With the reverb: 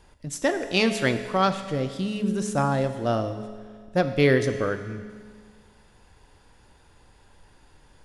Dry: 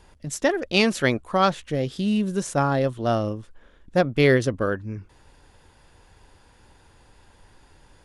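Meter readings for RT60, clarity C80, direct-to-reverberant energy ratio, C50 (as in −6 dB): 1.8 s, 11.0 dB, 8.0 dB, 9.5 dB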